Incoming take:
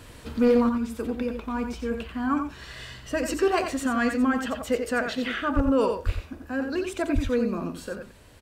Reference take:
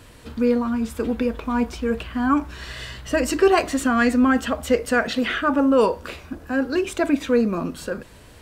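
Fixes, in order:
clipped peaks rebuilt −13.5 dBFS
high-pass at the plosives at 0:05.55/0:06.05/0:07.14
echo removal 89 ms −7 dB
level 0 dB, from 0:00.69 +6.5 dB

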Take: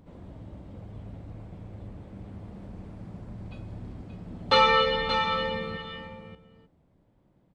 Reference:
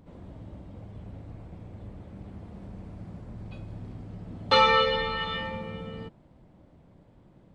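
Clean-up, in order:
echo removal 578 ms −8 dB
level 0 dB, from 0:05.77 +9.5 dB

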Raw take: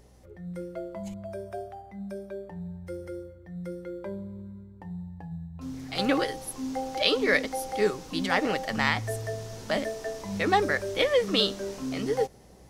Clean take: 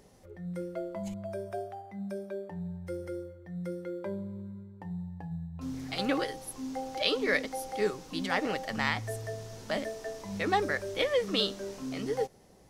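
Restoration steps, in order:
hum removal 61.9 Hz, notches 5
level 0 dB, from 0:05.95 −4.5 dB

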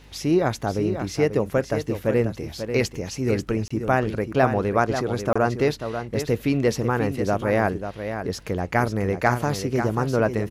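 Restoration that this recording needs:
click removal
hum removal 51.1 Hz, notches 6
repair the gap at 0:03.68/0:05.33, 25 ms
echo removal 540 ms −8.5 dB

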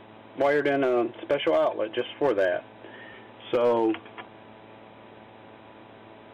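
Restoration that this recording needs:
clipped peaks rebuilt −16 dBFS
hum removal 109.2 Hz, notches 9

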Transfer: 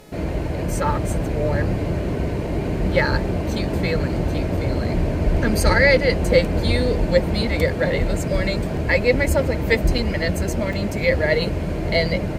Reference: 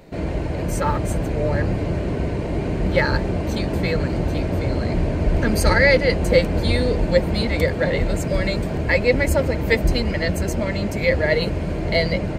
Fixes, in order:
hum removal 425.9 Hz, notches 35
repair the gap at 0:04.57/0:09.98/0:10.73, 3.6 ms

